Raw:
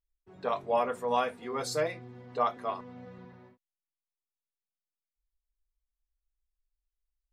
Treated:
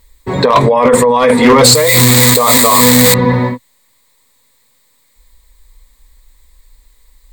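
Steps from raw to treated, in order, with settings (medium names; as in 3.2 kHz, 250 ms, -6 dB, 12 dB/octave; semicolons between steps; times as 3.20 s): 1.75–3.14 s: zero-crossing glitches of -21 dBFS; rippled EQ curve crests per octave 1, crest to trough 11 dB; compressor with a negative ratio -35 dBFS, ratio -1; overload inside the chain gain 31 dB; loudness maximiser +35 dB; trim -1 dB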